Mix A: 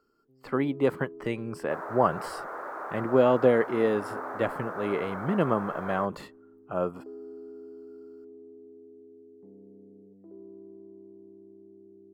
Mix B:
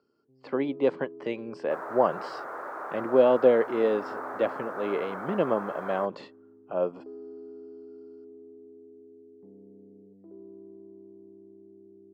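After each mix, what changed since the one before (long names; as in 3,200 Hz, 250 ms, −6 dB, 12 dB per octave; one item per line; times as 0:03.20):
speech: add loudspeaker in its box 240–5,400 Hz, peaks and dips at 550 Hz +4 dB, 1,300 Hz −8 dB, 1,900 Hz −4 dB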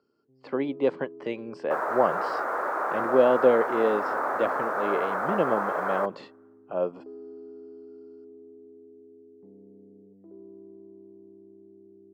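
second sound +9.0 dB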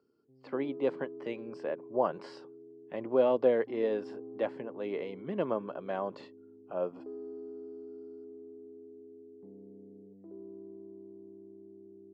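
speech −6.0 dB
second sound: muted
reverb: off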